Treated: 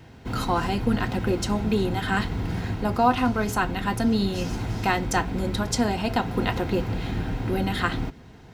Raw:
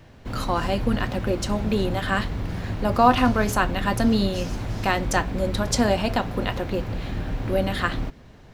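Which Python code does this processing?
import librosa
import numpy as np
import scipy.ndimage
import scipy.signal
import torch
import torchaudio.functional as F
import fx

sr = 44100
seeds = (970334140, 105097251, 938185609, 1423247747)

y = fx.rider(x, sr, range_db=3, speed_s=0.5)
y = fx.notch_comb(y, sr, f0_hz=580.0)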